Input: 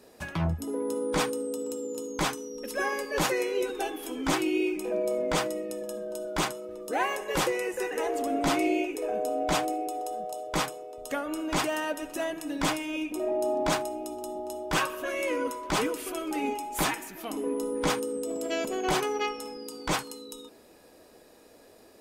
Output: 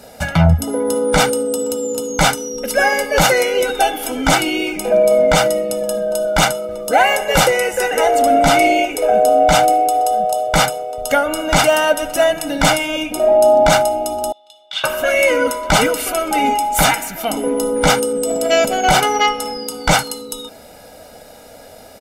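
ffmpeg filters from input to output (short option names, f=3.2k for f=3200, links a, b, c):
-filter_complex "[0:a]asettb=1/sr,asplit=3[a][b][c];[a]atrim=end=14.324[d];[b]atrim=start=14.32:end=14.84,asetpts=PTS-STARTPTS,afade=t=in:d=0.004:c=qsin,afade=t=out:st=0.516:d=0.004:c=qsin,bandpass=f=3.5k:t=q:w=7.1[e];[c]atrim=start=14.836[f];[d][e]acrossfade=d=0.004:c1=hsin:c2=qsin[g];[g][f]acrossfade=d=0.004:c1=qsin:c2=hsin,aecho=1:1:1.4:0.77,alimiter=level_in=16dB:limit=-1dB:release=50:level=0:latency=1,volume=-1.5dB"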